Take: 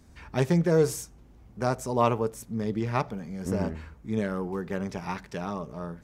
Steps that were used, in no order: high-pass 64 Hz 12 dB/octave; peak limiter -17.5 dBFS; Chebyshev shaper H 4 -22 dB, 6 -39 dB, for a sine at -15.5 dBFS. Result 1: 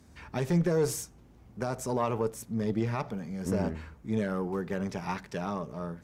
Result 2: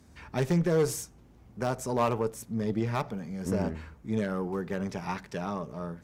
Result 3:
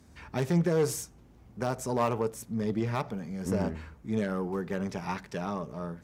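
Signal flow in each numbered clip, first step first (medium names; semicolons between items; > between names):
high-pass > peak limiter > Chebyshev shaper; high-pass > Chebyshev shaper > peak limiter; Chebyshev shaper > high-pass > peak limiter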